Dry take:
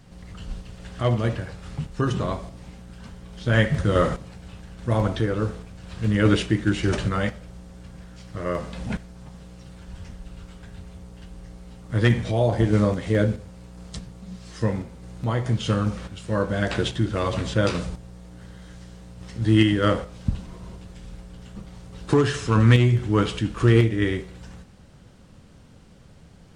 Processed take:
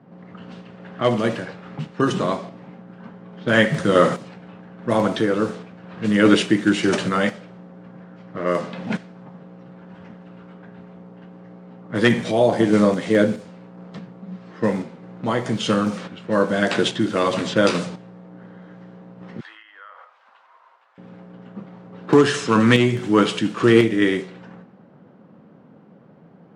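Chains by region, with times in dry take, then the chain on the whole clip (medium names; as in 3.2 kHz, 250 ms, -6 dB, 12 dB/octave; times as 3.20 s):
19.40–20.98 s: high-pass 1 kHz 24 dB/octave + compression 12:1, threshold -40 dBFS
whole clip: level-controlled noise filter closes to 1 kHz, open at -20 dBFS; high-pass 170 Hz 24 dB/octave; trim +6 dB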